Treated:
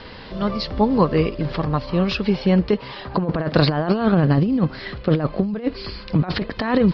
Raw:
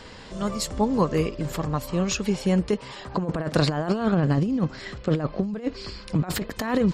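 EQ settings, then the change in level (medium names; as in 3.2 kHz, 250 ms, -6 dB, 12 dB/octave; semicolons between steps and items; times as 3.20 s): steep low-pass 5 kHz 72 dB/octave; +5.0 dB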